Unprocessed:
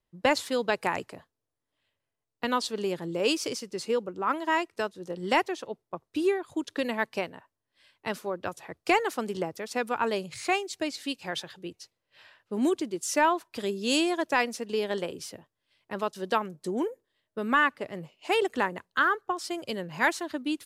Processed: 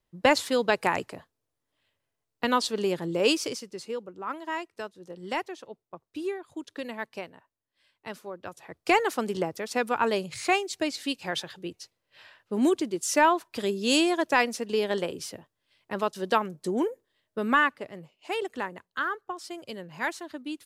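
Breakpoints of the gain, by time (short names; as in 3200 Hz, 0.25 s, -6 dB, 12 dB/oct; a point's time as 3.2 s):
3.28 s +3 dB
3.91 s -6.5 dB
8.44 s -6.5 dB
9 s +2.5 dB
17.48 s +2.5 dB
18.03 s -5.5 dB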